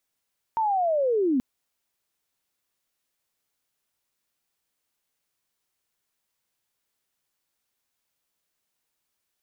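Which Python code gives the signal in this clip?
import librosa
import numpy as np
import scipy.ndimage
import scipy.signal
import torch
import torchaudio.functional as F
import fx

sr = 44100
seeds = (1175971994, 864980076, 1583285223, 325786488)

y = fx.chirp(sr, length_s=0.83, from_hz=920.0, to_hz=240.0, law='linear', from_db=-21.0, to_db=-19.5)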